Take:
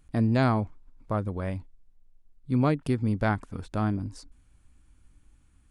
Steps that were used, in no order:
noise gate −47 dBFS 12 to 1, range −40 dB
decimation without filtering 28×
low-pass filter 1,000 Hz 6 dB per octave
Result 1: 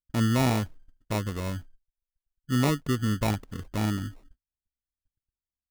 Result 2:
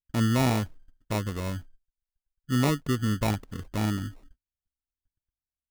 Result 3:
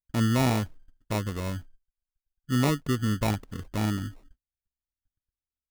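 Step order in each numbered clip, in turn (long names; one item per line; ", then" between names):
low-pass filter, then decimation without filtering, then noise gate
noise gate, then low-pass filter, then decimation without filtering
low-pass filter, then noise gate, then decimation without filtering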